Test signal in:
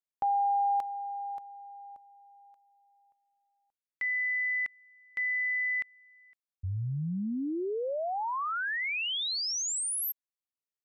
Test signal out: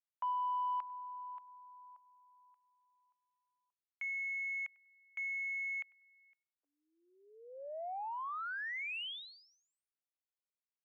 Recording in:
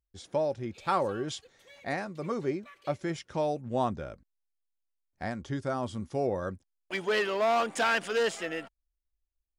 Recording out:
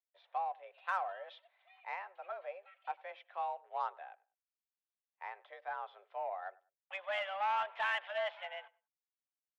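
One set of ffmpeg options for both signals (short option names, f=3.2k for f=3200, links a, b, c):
-filter_complex "[0:a]highpass=f=420:t=q:w=0.5412,highpass=f=420:t=q:w=1.307,lowpass=f=3.1k:t=q:w=0.5176,lowpass=f=3.1k:t=q:w=0.7071,lowpass=f=3.1k:t=q:w=1.932,afreqshift=190,asplit=2[a][b];[b]adelay=98,lowpass=f=2.6k:p=1,volume=-22dB,asplit=2[c][d];[d]adelay=98,lowpass=f=2.6k:p=1,volume=0.24[e];[a][c][e]amix=inputs=3:normalize=0,aeval=exprs='0.168*(cos(1*acos(clip(val(0)/0.168,-1,1)))-cos(1*PI/2))+0.00299*(cos(7*acos(clip(val(0)/0.168,-1,1)))-cos(7*PI/2))':c=same,volume=-7.5dB"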